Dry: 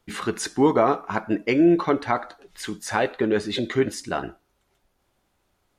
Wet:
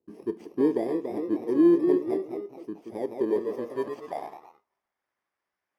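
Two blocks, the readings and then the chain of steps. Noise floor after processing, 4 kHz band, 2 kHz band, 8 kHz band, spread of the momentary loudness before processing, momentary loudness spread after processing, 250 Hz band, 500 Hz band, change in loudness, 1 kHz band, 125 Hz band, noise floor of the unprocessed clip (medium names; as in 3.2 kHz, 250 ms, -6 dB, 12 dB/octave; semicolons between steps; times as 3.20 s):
under -85 dBFS, under -20 dB, -18.5 dB, under -25 dB, 14 LU, 17 LU, -2.5 dB, -3.0 dB, -4.0 dB, -13.5 dB, -13.5 dB, -71 dBFS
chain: bit-reversed sample order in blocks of 32 samples; ever faster or slower copies 328 ms, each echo +1 st, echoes 3, each echo -6 dB; band-pass sweep 360 Hz -> 1.4 kHz, 3.11–5.03 s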